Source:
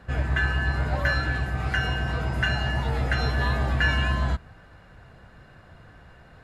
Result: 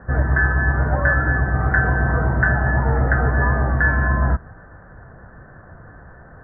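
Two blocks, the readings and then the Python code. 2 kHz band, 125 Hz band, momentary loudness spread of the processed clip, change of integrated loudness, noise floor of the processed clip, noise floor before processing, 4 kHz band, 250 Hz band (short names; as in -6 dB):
+7.0 dB, +7.0 dB, 2 LU, +7.0 dB, -44 dBFS, -51 dBFS, under -35 dB, +7.5 dB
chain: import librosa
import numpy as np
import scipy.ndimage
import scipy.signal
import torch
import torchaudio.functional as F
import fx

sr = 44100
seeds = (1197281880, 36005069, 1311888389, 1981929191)

y = scipy.signal.sosfilt(scipy.signal.cheby1(6, 1.0, 1800.0, 'lowpass', fs=sr, output='sos'), x)
y = fx.rider(y, sr, range_db=10, speed_s=0.5)
y = F.gain(torch.from_numpy(y), 8.0).numpy()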